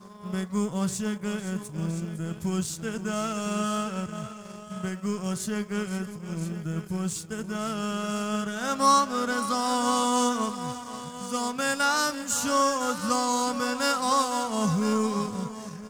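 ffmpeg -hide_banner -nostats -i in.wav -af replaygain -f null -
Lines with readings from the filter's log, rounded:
track_gain = +8.7 dB
track_peak = 0.241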